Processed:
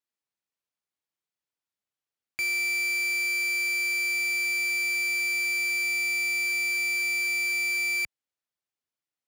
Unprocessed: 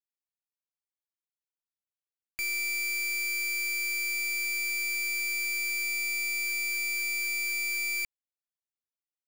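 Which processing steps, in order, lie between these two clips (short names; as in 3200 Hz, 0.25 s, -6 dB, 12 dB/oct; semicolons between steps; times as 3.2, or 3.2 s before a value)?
HPF 69 Hz; high shelf 8700 Hz -10.5 dB; gain +5 dB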